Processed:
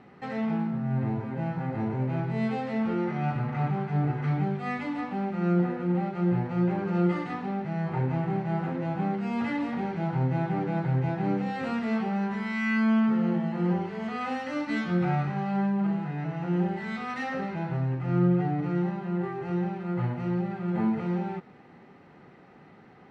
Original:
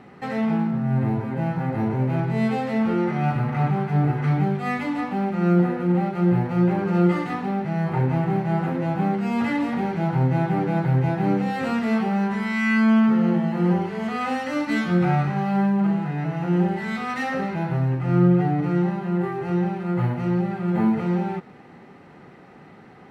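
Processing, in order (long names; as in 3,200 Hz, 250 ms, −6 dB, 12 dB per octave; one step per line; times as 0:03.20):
low-pass filter 6,400 Hz 12 dB per octave
level −6 dB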